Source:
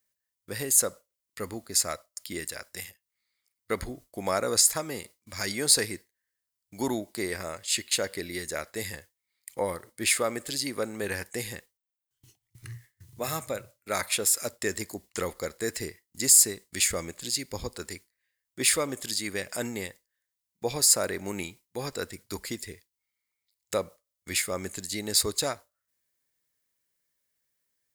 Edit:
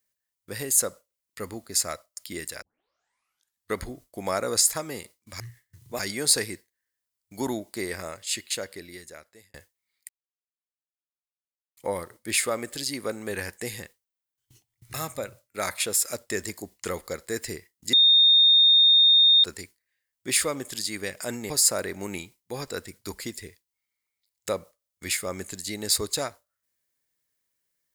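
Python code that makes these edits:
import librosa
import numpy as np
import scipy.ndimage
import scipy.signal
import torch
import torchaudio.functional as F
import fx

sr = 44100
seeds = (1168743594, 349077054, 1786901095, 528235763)

y = fx.edit(x, sr, fx.tape_start(start_s=2.62, length_s=1.14),
    fx.fade_out_span(start_s=7.46, length_s=1.49),
    fx.insert_silence(at_s=9.5, length_s=1.68),
    fx.move(start_s=12.67, length_s=0.59, to_s=5.4),
    fx.bleep(start_s=16.25, length_s=1.51, hz=3670.0, db=-13.5),
    fx.cut(start_s=19.82, length_s=0.93), tone=tone)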